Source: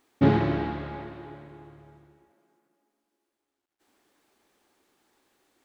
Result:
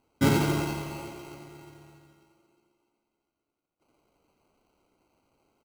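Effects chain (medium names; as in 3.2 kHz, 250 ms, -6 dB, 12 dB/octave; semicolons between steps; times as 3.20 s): vibrato 7.9 Hz 23 cents; sample-and-hold 25×; feedback delay 88 ms, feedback 56%, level -5.5 dB; trim -3 dB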